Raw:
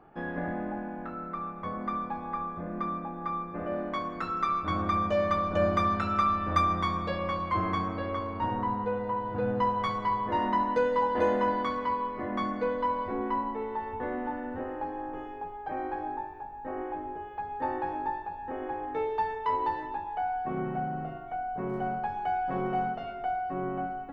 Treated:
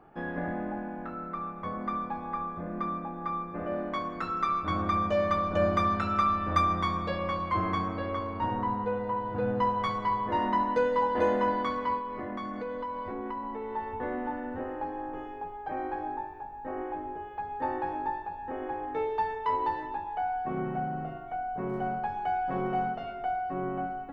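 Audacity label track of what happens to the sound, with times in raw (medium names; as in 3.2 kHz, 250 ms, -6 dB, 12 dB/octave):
11.980000	13.760000	compression, threshold -32 dBFS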